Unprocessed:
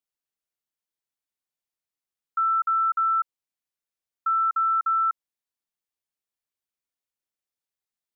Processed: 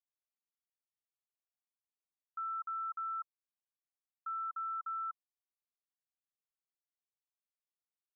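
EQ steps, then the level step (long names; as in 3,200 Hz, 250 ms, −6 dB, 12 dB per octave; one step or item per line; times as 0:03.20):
formant filter a
phaser with its sweep stopped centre 1,200 Hz, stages 4
−2.5 dB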